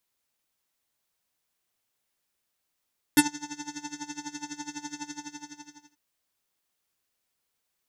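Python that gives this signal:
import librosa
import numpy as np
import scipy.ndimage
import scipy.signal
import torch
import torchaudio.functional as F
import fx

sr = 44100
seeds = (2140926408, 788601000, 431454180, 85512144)

y = fx.sub_patch_tremolo(sr, seeds[0], note=62, wave='square', wave2='saw', interval_st=19, detune_cents=12, level2_db=0, sub_db=-19.0, noise_db=-29, kind='lowpass', cutoff_hz=6200.0, q=7.6, env_oct=1.0, env_decay_s=0.06, env_sustain_pct=5, attack_ms=1.0, decay_s=0.11, sustain_db=-22.5, release_s=0.94, note_s=1.85, lfo_hz=12.0, tremolo_db=17.5)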